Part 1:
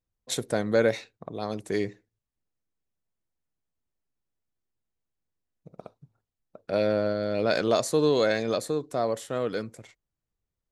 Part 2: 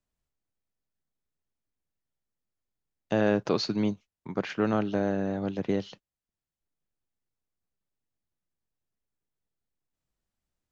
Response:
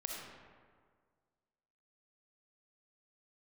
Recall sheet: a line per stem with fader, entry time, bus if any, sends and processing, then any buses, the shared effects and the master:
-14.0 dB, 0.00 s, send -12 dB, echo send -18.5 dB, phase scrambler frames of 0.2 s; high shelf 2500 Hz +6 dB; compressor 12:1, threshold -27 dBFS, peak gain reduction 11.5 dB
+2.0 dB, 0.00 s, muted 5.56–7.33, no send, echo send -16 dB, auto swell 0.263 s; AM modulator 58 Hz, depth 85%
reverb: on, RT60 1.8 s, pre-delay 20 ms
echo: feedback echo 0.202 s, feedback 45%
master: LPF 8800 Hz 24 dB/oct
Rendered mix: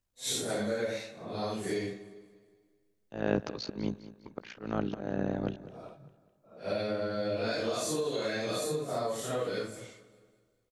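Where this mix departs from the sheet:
stem 1 -14.0 dB -> -3.0 dB; master: missing LPF 8800 Hz 24 dB/oct

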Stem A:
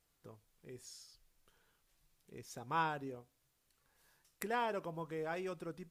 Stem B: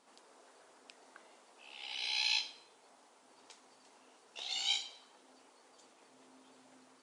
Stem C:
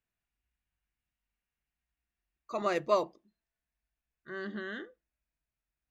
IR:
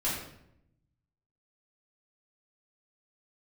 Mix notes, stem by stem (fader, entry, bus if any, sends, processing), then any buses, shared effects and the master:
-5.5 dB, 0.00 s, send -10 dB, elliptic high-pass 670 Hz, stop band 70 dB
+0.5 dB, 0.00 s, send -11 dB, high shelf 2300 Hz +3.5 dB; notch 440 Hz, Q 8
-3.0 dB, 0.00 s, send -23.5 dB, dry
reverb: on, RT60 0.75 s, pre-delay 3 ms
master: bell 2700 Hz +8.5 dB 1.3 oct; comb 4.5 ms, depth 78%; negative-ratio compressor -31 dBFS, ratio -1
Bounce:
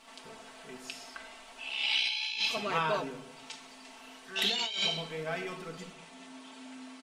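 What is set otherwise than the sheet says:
stem A: missing elliptic high-pass 670 Hz, stop band 70 dB; stem B: missing high shelf 2300 Hz +3.5 dB; stem C -3.0 dB -> -12.0 dB

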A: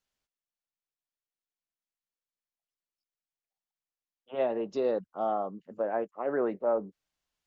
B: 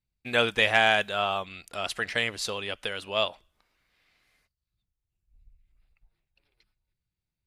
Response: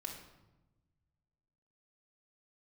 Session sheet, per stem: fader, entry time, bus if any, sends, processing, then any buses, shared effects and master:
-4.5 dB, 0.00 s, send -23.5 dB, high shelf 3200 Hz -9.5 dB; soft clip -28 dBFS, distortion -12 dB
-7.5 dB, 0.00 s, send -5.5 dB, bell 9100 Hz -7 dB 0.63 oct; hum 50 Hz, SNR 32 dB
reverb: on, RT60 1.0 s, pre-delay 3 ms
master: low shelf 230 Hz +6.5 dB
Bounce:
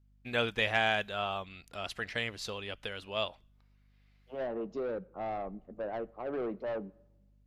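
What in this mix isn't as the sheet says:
stem B: send off; reverb return +6.5 dB

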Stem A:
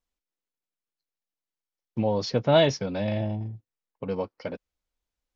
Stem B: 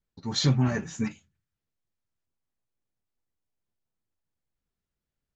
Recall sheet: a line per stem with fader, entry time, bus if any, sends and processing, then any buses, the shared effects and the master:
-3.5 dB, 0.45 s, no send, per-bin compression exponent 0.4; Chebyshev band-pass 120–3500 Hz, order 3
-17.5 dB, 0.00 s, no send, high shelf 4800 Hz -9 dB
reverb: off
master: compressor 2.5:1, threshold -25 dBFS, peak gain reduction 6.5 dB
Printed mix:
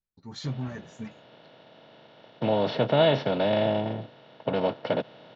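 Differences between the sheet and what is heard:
stem B -17.5 dB -> -9.5 dB; master: missing compressor 2.5:1, threshold -25 dBFS, peak gain reduction 6.5 dB

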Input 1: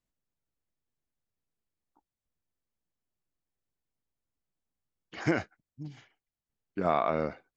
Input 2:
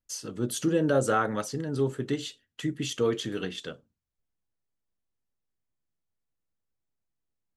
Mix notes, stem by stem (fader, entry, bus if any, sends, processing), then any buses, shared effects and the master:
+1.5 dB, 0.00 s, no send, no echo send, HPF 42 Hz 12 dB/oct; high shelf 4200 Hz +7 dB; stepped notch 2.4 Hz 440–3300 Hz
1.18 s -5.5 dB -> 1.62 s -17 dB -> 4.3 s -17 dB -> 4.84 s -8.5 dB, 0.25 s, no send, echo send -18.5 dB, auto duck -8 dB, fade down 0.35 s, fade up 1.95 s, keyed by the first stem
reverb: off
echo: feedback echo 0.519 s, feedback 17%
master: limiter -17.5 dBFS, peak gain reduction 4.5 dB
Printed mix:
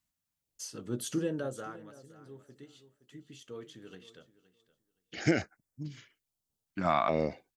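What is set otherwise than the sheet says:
stem 2: entry 0.25 s -> 0.50 s; master: missing limiter -17.5 dBFS, peak gain reduction 4.5 dB

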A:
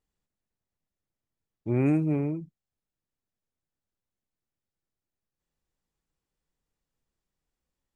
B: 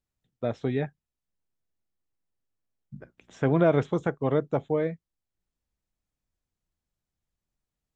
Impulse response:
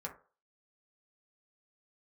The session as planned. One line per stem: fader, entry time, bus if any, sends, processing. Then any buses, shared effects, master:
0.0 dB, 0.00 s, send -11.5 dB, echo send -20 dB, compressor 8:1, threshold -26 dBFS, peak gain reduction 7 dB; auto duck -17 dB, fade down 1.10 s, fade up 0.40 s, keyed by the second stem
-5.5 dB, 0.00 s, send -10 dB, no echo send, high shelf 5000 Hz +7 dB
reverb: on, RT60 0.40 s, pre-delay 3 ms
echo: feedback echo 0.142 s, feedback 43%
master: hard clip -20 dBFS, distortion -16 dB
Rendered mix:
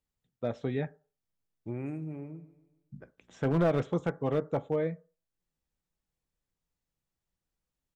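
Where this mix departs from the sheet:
stem A 0.0 dB -> -7.5 dB; stem B: missing high shelf 5000 Hz +7 dB

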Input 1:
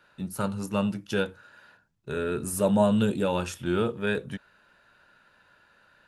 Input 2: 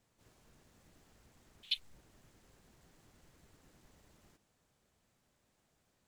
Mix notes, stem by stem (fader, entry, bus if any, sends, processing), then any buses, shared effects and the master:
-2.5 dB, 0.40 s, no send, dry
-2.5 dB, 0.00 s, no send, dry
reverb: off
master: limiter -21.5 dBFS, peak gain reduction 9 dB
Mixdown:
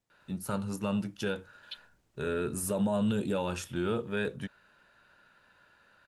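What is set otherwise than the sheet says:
stem 1: entry 0.40 s -> 0.10 s; stem 2 -2.5 dB -> -9.0 dB

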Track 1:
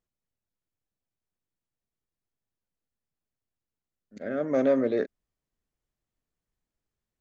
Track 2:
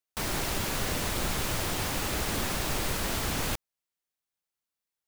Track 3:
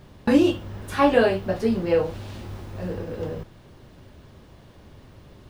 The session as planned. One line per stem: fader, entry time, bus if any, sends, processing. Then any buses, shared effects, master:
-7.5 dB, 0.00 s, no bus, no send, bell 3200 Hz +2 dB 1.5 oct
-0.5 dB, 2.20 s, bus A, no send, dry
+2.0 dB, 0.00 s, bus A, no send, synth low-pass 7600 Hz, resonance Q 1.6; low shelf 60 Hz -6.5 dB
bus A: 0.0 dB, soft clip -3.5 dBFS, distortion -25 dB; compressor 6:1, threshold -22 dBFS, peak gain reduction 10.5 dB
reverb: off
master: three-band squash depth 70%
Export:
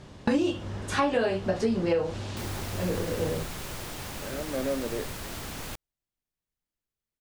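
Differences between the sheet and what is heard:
stem 2 -0.5 dB -> -7.5 dB; master: missing three-band squash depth 70%

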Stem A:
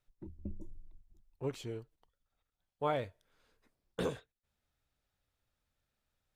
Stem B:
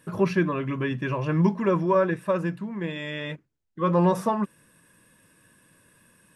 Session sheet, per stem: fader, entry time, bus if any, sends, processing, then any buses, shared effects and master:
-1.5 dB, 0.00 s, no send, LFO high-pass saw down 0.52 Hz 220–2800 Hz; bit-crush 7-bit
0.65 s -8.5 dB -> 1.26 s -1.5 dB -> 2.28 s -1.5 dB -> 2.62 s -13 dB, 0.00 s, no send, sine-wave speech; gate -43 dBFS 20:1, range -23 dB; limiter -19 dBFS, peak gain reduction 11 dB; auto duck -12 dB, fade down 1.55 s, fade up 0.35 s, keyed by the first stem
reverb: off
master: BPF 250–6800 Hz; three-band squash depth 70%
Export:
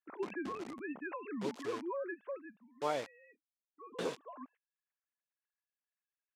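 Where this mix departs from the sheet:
stem A: missing LFO high-pass saw down 0.52 Hz 220–2800 Hz; master: missing three-band squash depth 70%

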